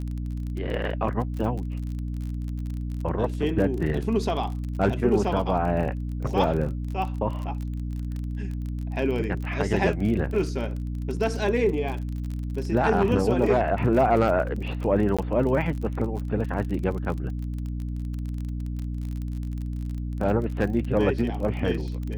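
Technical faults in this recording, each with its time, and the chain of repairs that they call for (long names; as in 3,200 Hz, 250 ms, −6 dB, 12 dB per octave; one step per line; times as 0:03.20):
surface crackle 34 per second −31 dBFS
mains hum 60 Hz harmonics 5 −30 dBFS
0:15.17–0:15.19: drop-out 16 ms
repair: click removal
hum removal 60 Hz, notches 5
repair the gap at 0:15.17, 16 ms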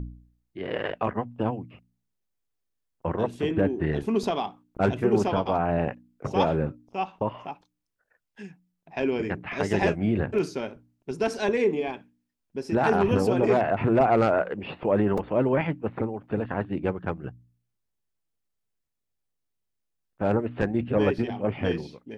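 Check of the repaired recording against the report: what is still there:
none of them is left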